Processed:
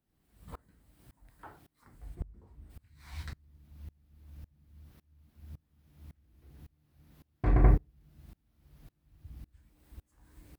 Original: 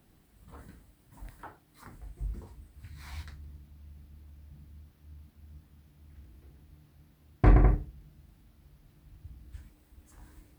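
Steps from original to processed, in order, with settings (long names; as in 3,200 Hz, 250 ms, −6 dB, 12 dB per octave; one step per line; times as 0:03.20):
0:02.14–0:02.69: high-shelf EQ 2,400 Hz → 2,200 Hz −12 dB
tremolo with a ramp in dB swelling 1.8 Hz, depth 28 dB
level +7 dB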